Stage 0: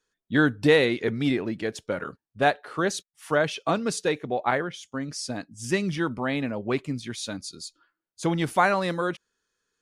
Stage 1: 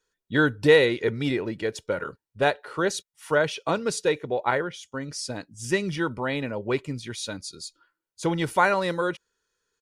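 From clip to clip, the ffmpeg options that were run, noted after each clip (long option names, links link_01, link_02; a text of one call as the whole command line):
ffmpeg -i in.wav -af "aecho=1:1:2.1:0.38" out.wav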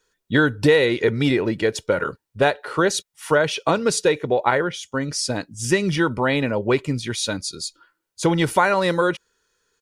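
ffmpeg -i in.wav -af "acompressor=threshold=-23dB:ratio=3,volume=8.5dB" out.wav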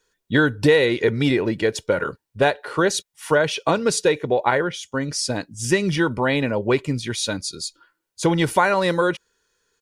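ffmpeg -i in.wav -af "bandreject=frequency=1300:width=17" out.wav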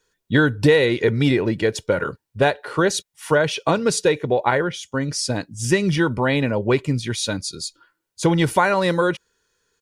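ffmpeg -i in.wav -af "equalizer=frequency=110:width_type=o:width=1.8:gain=4" out.wav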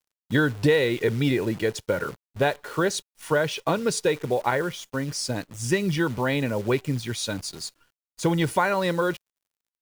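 ffmpeg -i in.wav -af "acrusher=bits=7:dc=4:mix=0:aa=0.000001,volume=-5dB" out.wav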